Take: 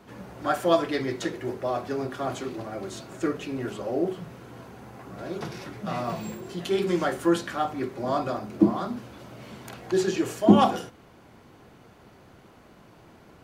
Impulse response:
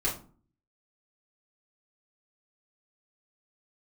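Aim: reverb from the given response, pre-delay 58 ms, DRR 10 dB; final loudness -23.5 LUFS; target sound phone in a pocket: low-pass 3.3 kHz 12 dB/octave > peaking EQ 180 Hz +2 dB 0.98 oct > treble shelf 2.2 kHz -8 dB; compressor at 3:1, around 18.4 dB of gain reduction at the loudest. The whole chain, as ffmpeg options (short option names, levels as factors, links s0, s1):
-filter_complex "[0:a]acompressor=threshold=0.0141:ratio=3,asplit=2[s0][s1];[1:a]atrim=start_sample=2205,adelay=58[s2];[s1][s2]afir=irnorm=-1:irlink=0,volume=0.126[s3];[s0][s3]amix=inputs=2:normalize=0,lowpass=3300,equalizer=f=180:t=o:w=0.98:g=2,highshelf=f=2200:g=-8,volume=5.62"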